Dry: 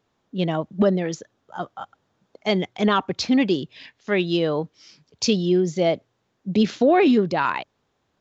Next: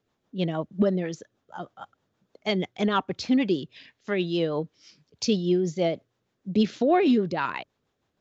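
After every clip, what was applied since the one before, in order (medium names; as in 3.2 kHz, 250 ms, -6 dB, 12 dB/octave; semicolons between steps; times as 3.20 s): rotary cabinet horn 6.3 Hz; trim -2.5 dB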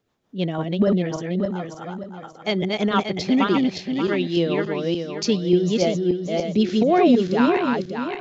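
backward echo that repeats 291 ms, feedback 56%, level -2 dB; trim +2.5 dB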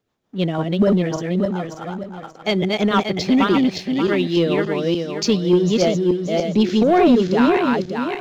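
waveshaping leveller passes 1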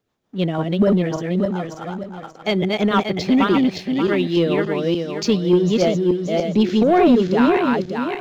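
dynamic bell 5.8 kHz, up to -4 dB, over -41 dBFS, Q 1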